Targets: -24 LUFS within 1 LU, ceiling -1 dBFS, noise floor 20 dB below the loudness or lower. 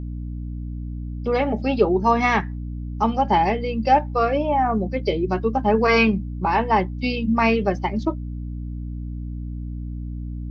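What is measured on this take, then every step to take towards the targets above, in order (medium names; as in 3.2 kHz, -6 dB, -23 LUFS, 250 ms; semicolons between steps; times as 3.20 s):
hum 60 Hz; highest harmonic 300 Hz; hum level -27 dBFS; loudness -21.0 LUFS; peak level -5.5 dBFS; loudness target -24.0 LUFS
-> hum notches 60/120/180/240/300 Hz; trim -3 dB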